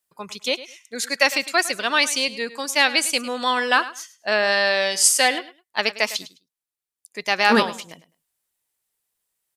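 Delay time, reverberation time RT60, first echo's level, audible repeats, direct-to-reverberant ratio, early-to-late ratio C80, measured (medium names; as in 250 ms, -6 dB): 104 ms, no reverb, -16.0 dB, 2, no reverb, no reverb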